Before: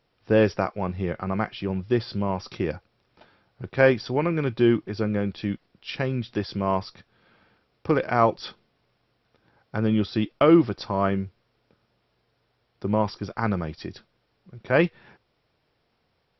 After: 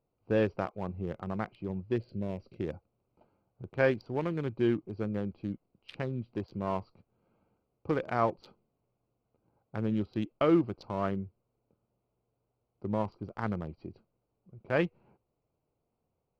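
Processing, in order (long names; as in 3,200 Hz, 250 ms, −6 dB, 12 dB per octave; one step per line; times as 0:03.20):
adaptive Wiener filter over 25 samples
0:01.96–0:02.60: flat-topped bell 1,000 Hz −12.5 dB 1 octave
level −8 dB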